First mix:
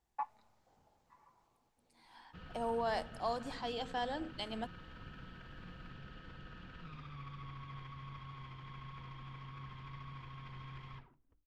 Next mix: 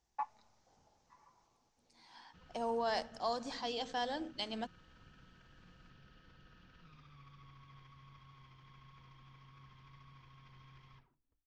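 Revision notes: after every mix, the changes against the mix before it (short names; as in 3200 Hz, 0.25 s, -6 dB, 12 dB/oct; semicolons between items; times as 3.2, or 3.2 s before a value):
background -10.5 dB; master: add synth low-pass 6000 Hz, resonance Q 3.2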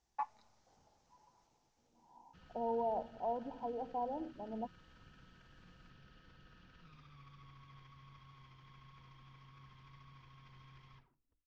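second voice: add Chebyshev low-pass 1000 Hz, order 10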